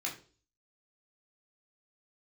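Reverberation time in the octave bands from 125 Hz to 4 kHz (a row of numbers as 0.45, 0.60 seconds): 0.60, 0.50, 0.45, 0.35, 0.30, 0.40 seconds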